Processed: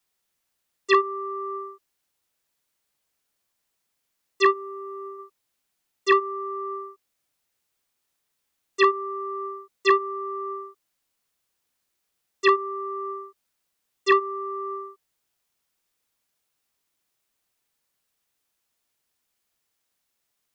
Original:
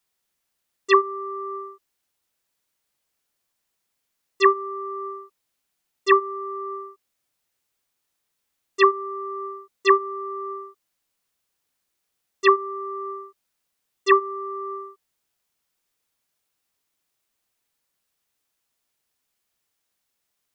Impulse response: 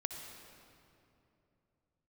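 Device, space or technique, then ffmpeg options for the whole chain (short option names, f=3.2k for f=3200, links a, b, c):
one-band saturation: -filter_complex "[0:a]acrossover=split=290|2000[a][b][c];[b]asoftclip=type=tanh:threshold=-13dB[d];[a][d][c]amix=inputs=3:normalize=0,asplit=3[e][f][g];[e]afade=t=out:st=4.5:d=0.02[h];[f]equalizer=f=1.1k:w=0.51:g=-7,afade=t=in:st=4.5:d=0.02,afade=t=out:st=5.18:d=0.02[i];[g]afade=t=in:st=5.18:d=0.02[j];[h][i][j]amix=inputs=3:normalize=0"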